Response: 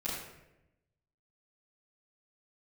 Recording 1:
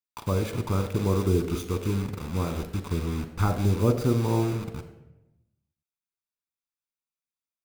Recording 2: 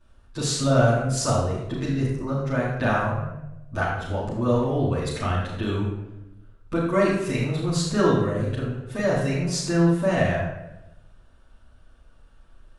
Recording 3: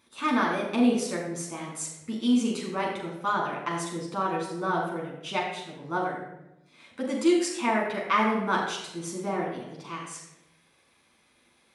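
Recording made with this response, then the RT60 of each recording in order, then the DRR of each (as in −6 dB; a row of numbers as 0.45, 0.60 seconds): 2; 0.90, 0.90, 0.90 seconds; 6.0, −10.5, −2.5 decibels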